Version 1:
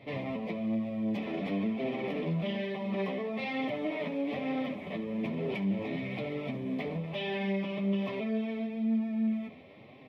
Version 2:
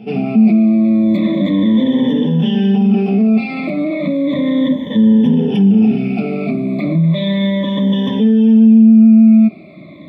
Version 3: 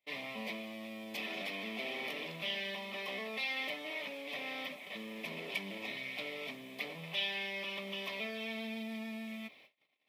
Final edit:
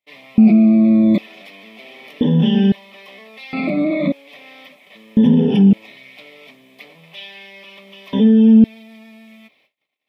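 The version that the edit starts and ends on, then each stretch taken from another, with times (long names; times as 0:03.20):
3
0:00.38–0:01.18: punch in from 2
0:02.21–0:02.72: punch in from 2
0:03.53–0:04.12: punch in from 2
0:05.17–0:05.73: punch in from 2
0:08.13–0:08.64: punch in from 2
not used: 1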